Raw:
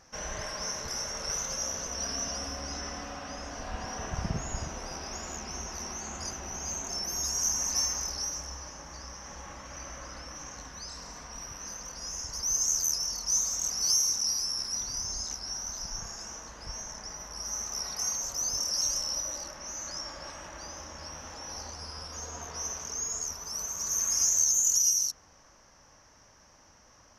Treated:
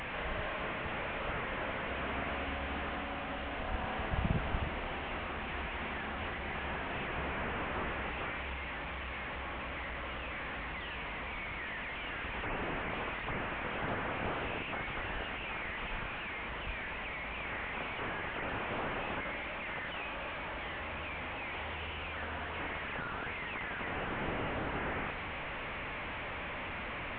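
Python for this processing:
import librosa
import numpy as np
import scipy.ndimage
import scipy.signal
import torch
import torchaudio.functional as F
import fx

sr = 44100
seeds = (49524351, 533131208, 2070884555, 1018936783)

y = fx.delta_mod(x, sr, bps=16000, step_db=-34.0)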